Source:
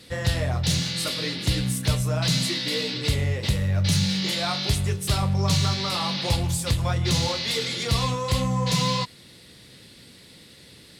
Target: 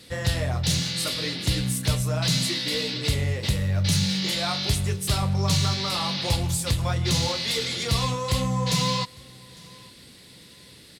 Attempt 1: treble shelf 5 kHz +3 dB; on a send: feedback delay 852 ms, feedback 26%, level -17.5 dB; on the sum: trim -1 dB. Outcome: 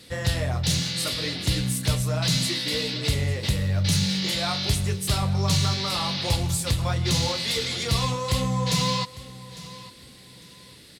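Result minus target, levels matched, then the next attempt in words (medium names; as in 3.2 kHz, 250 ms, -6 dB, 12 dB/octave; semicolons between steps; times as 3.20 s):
echo-to-direct +7.5 dB
treble shelf 5 kHz +3 dB; on a send: feedback delay 852 ms, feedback 26%, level -25 dB; on the sum: trim -1 dB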